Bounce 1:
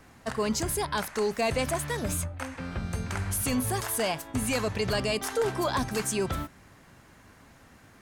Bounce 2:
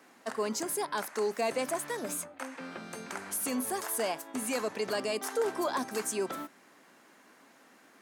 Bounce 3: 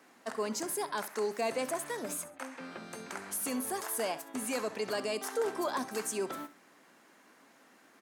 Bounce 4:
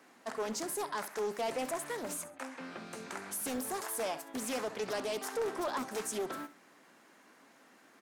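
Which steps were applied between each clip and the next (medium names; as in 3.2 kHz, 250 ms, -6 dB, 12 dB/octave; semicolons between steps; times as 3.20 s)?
high-pass 240 Hz 24 dB/octave; dynamic bell 3.2 kHz, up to -5 dB, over -44 dBFS, Q 0.98; trim -2.5 dB
feedback delay 66 ms, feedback 23%, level -16 dB; trim -2 dB
saturation -27 dBFS, distortion -18 dB; loudspeaker Doppler distortion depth 0.51 ms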